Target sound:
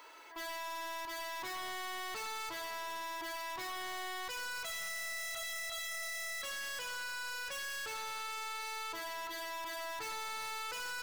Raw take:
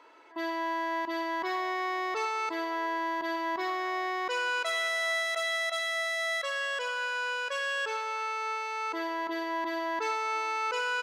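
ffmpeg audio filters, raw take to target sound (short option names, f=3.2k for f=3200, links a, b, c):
-af "aemphasis=mode=production:type=riaa,aeval=exprs='(tanh(112*val(0)+0.15)-tanh(0.15))/112':c=same,bandreject=f=165.3:t=h:w=4,bandreject=f=330.6:t=h:w=4,bandreject=f=495.9:t=h:w=4,volume=1dB"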